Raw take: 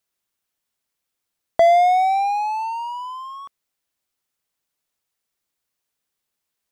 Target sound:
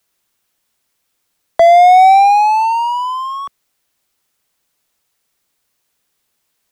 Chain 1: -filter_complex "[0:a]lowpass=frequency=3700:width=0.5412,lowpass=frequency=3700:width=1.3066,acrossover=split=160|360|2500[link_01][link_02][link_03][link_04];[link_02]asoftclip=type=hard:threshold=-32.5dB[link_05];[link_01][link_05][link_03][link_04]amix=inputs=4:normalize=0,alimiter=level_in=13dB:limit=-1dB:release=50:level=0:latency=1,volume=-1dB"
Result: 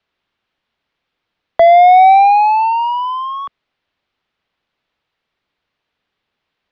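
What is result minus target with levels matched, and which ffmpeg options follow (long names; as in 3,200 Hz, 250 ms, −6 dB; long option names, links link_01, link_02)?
4,000 Hz band −3.0 dB
-filter_complex "[0:a]acrossover=split=160|360|2500[link_01][link_02][link_03][link_04];[link_02]asoftclip=type=hard:threshold=-32.5dB[link_05];[link_01][link_05][link_03][link_04]amix=inputs=4:normalize=0,alimiter=level_in=13dB:limit=-1dB:release=50:level=0:latency=1,volume=-1dB"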